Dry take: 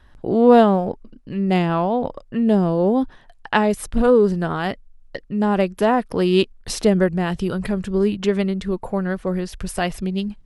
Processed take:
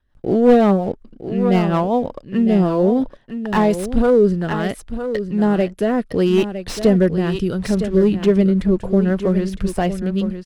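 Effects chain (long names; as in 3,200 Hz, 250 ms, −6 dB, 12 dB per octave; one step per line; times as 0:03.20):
0:07.70–0:09.89: tilt shelving filter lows +4 dB, about 1,200 Hz
leveller curve on the samples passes 1
rotating-speaker cabinet horn 5.5 Hz, later 0.7 Hz, at 0:02.03
noise gate −45 dBFS, range −13 dB
single-tap delay 959 ms −10 dB
slew-rate limiting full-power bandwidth 200 Hz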